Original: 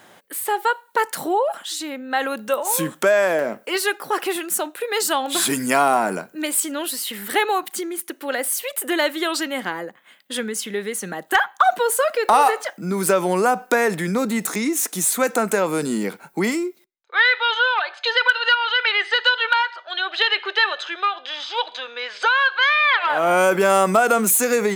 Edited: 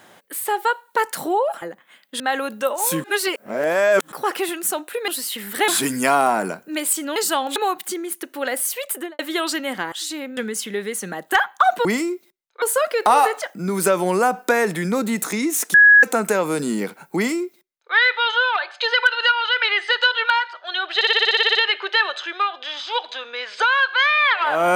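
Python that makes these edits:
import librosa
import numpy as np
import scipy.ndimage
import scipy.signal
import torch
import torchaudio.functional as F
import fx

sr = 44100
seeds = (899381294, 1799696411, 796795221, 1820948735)

y = fx.studio_fade_out(x, sr, start_s=8.77, length_s=0.29)
y = fx.edit(y, sr, fx.swap(start_s=1.62, length_s=0.45, other_s=9.79, other_length_s=0.58),
    fx.reverse_span(start_s=2.91, length_s=1.08),
    fx.swap(start_s=4.95, length_s=0.4, other_s=6.83, other_length_s=0.6),
    fx.bleep(start_s=14.97, length_s=0.29, hz=1670.0, db=-6.5),
    fx.duplicate(start_s=16.39, length_s=0.77, to_s=11.85),
    fx.stutter(start_s=20.18, slice_s=0.06, count=11), tone=tone)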